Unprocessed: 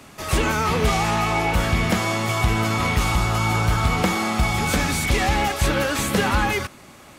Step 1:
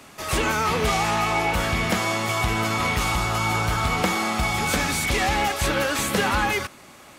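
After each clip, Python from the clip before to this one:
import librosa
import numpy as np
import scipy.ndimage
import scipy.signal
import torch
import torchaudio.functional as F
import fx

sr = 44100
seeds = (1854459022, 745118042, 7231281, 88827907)

y = fx.low_shelf(x, sr, hz=260.0, db=-6.5)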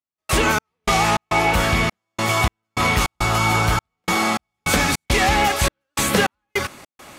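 y = fx.step_gate(x, sr, bpm=103, pattern='..xx..xx.xxxx', floor_db=-60.0, edge_ms=4.5)
y = y * librosa.db_to_amplitude(5.0)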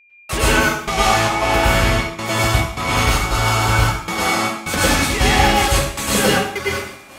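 y = x + 10.0 ** (-46.0 / 20.0) * np.sin(2.0 * np.pi * 2400.0 * np.arange(len(x)) / sr)
y = fx.rev_plate(y, sr, seeds[0], rt60_s=0.63, hf_ratio=0.95, predelay_ms=90, drr_db=-6.5)
y = y * librosa.db_to_amplitude(-4.0)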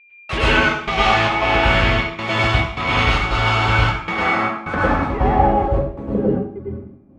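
y = fx.filter_sweep_lowpass(x, sr, from_hz=3000.0, to_hz=240.0, start_s=3.89, end_s=6.79, q=1.4)
y = y * librosa.db_to_amplitude(-1.0)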